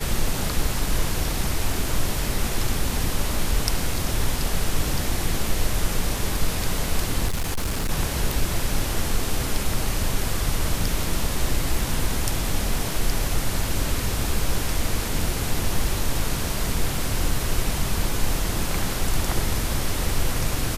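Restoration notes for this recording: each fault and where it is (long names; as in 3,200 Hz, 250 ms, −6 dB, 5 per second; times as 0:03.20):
0:07.27–0:07.91: clipping −20.5 dBFS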